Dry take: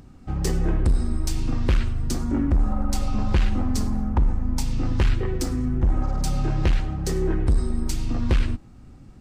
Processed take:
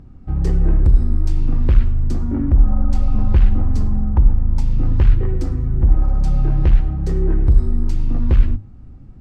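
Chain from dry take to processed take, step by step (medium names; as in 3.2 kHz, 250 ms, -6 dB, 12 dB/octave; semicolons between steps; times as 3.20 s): low-pass 1.7 kHz 6 dB/octave; bass shelf 180 Hz +11 dB; hum notches 50/100/150/200/250 Hz; trim -1.5 dB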